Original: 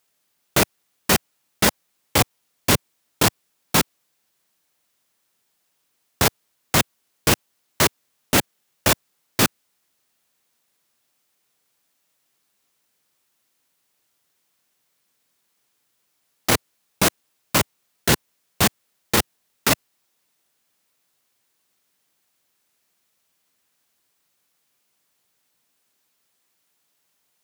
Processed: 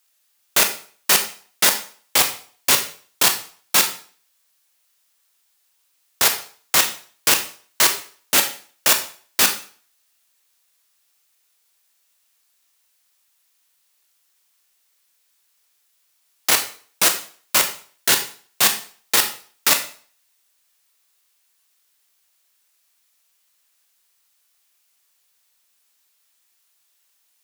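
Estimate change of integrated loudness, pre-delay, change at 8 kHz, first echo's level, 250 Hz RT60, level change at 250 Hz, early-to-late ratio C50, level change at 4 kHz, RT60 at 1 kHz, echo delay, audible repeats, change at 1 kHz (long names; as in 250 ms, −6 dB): +3.0 dB, 21 ms, +5.5 dB, no echo audible, 0.45 s, −10.5 dB, 10.5 dB, +4.5 dB, 0.45 s, no echo audible, no echo audible, −0.5 dB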